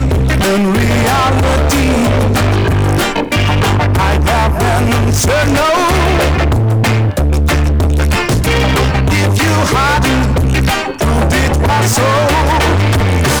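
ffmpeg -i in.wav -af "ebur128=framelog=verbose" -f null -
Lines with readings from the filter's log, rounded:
Integrated loudness:
  I:         -11.8 LUFS
  Threshold: -21.8 LUFS
Loudness range:
  LRA:         0.5 LU
  Threshold: -31.8 LUFS
  LRA low:   -12.1 LUFS
  LRA high:  -11.5 LUFS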